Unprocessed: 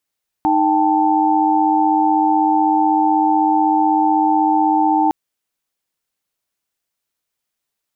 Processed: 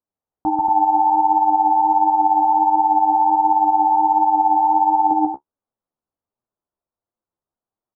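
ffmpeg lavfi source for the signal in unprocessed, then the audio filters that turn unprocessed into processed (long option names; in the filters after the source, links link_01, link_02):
-f lavfi -i "aevalsrc='0.15*(sin(2*PI*311.13*t)+sin(2*PI*783.99*t)+sin(2*PI*880*t))':duration=4.66:sample_rate=44100"
-af "lowpass=frequency=1100:width=0.5412,lowpass=frequency=1100:width=1.3066,aecho=1:1:139.9|233.2:0.794|0.562,flanger=delay=7.9:depth=7.1:regen=31:speed=1.4:shape=triangular"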